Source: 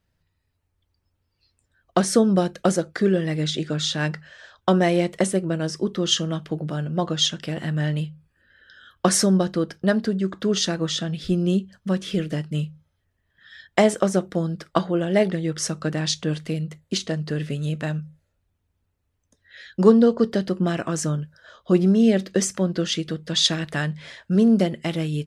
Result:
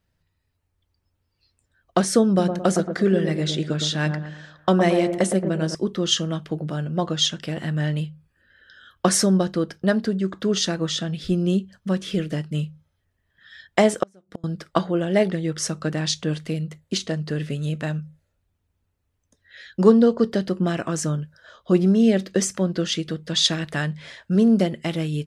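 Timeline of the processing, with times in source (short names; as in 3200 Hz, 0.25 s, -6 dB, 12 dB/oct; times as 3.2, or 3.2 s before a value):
2.28–5.75 dark delay 0.112 s, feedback 41%, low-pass 1300 Hz, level -6.5 dB
14.03–14.44 flipped gate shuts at -18 dBFS, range -32 dB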